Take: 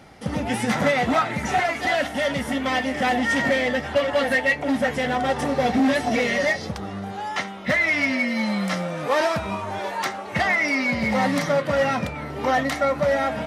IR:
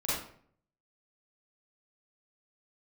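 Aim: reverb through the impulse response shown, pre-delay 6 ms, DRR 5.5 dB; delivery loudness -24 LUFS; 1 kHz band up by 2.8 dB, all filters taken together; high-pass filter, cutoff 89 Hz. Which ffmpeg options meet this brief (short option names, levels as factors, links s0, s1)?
-filter_complex "[0:a]highpass=89,equalizer=f=1000:t=o:g=4,asplit=2[s0][s1];[1:a]atrim=start_sample=2205,adelay=6[s2];[s1][s2]afir=irnorm=-1:irlink=0,volume=0.237[s3];[s0][s3]amix=inputs=2:normalize=0,volume=0.668"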